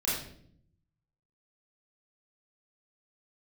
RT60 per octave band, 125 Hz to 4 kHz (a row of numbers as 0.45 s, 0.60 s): 1.3 s, 1.0 s, 0.75 s, 0.50 s, 0.50 s, 0.50 s